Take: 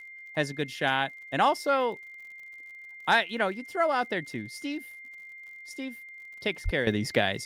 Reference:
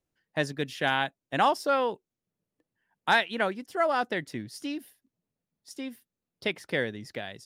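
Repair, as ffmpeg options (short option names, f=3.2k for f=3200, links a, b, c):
-filter_complex "[0:a]adeclick=t=4,bandreject=f=2.1k:w=30,asplit=3[a][b][c];[a]afade=t=out:st=6.64:d=0.02[d];[b]highpass=f=140:w=0.5412,highpass=f=140:w=1.3066,afade=t=in:st=6.64:d=0.02,afade=t=out:st=6.76:d=0.02[e];[c]afade=t=in:st=6.76:d=0.02[f];[d][e][f]amix=inputs=3:normalize=0,asetnsamples=n=441:p=0,asendcmd='6.87 volume volume -12dB',volume=0dB"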